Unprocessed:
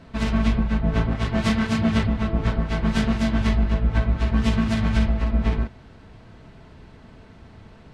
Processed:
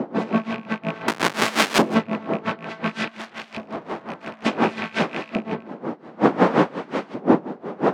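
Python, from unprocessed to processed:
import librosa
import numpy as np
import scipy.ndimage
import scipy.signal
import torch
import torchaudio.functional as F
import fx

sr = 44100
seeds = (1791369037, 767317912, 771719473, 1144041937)

y = fx.rattle_buzz(x, sr, strikes_db=-20.0, level_db=-21.0)
y = fx.dmg_wind(y, sr, seeds[0], corner_hz=390.0, level_db=-20.0)
y = fx.low_shelf(y, sr, hz=290.0, db=3.5)
y = fx.schmitt(y, sr, flips_db=-26.0, at=(1.08, 1.82))
y = scipy.signal.sosfilt(scipy.signal.butter(4, 170.0, 'highpass', fs=sr, output='sos'), y)
y = fx.bass_treble(y, sr, bass_db=5, treble_db=6)
y = fx.overload_stage(y, sr, gain_db=29.0, at=(3.08, 4.45))
y = fx.filter_lfo_bandpass(y, sr, shape='saw_up', hz=0.56, low_hz=650.0, high_hz=2400.0, q=0.75)
y = y + 10.0 ** (-17.0 / 20.0) * np.pad(y, (int(161 * sr / 1000.0), 0))[:len(y)]
y = y * 10.0 ** (-19 * (0.5 - 0.5 * np.cos(2.0 * np.pi * 5.6 * np.arange(len(y)) / sr)) / 20.0)
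y = y * librosa.db_to_amplitude(8.0)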